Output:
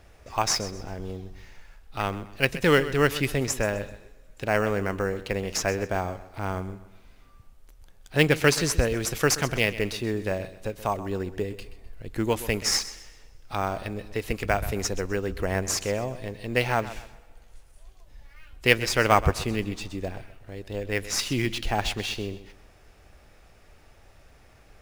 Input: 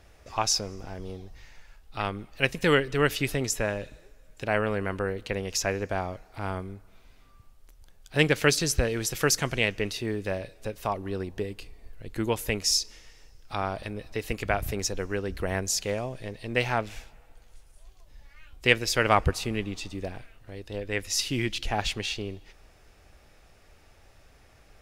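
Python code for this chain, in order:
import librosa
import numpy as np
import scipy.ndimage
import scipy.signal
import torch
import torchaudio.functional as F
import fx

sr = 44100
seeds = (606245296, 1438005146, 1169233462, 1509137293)

p1 = fx.sample_hold(x, sr, seeds[0], rate_hz=7200.0, jitter_pct=0)
p2 = x + F.gain(torch.from_numpy(p1), -10.5).numpy()
y = fx.echo_feedback(p2, sr, ms=128, feedback_pct=33, wet_db=-15)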